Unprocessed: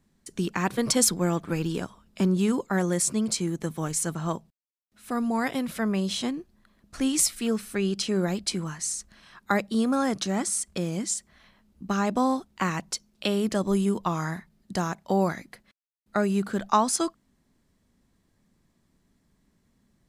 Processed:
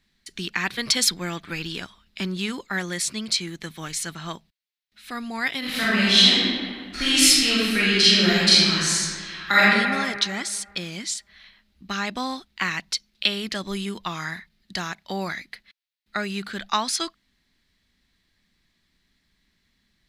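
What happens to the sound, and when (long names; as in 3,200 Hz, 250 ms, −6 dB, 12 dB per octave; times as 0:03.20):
0:05.59–0:09.71: thrown reverb, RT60 1.9 s, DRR −10 dB
whole clip: octave-band graphic EQ 125/250/500/1,000/2,000/4,000/8,000 Hz −7/−4/−7/−4/+8/+12/−5 dB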